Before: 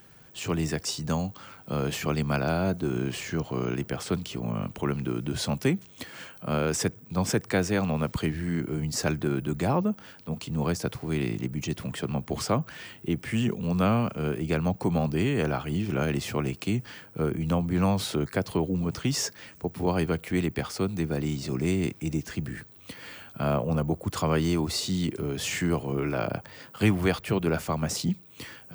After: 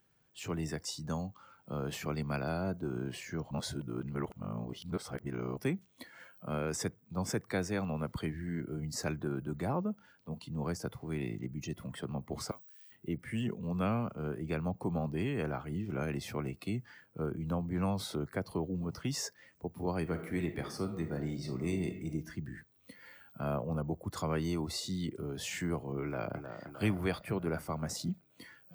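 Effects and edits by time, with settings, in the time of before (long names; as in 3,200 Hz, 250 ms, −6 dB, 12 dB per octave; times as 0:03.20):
0:03.51–0:05.57: reverse
0:12.51–0:12.92: first-order pre-emphasis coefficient 0.97
0:20.01–0:22.10: thrown reverb, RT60 0.83 s, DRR 5.5 dB
0:26.04–0:26.65: delay throw 310 ms, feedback 65%, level −8 dB
whole clip: noise reduction from a noise print of the clip's start 10 dB; level −8.5 dB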